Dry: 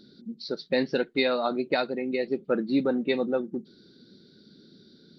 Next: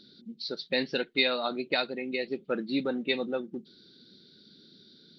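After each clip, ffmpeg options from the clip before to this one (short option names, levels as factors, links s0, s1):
-af "equalizer=f=3200:w=0.88:g=11,volume=0.531"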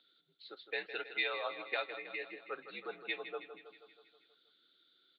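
-af "aecho=1:1:160|320|480|640|800|960|1120:0.282|0.169|0.101|0.0609|0.0365|0.0219|0.0131,highpass=f=590:t=q:w=0.5412,highpass=f=590:t=q:w=1.307,lowpass=f=3400:t=q:w=0.5176,lowpass=f=3400:t=q:w=0.7071,lowpass=f=3400:t=q:w=1.932,afreqshift=-71,volume=0.501"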